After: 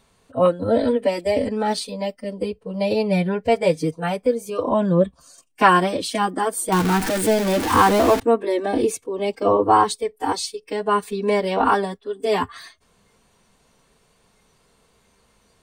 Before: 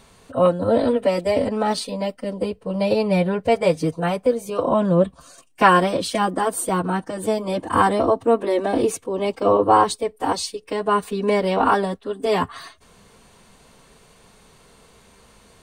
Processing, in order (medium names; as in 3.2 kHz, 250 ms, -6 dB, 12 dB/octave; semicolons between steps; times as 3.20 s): 6.72–8.20 s: jump at every zero crossing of -18.5 dBFS; spectral noise reduction 9 dB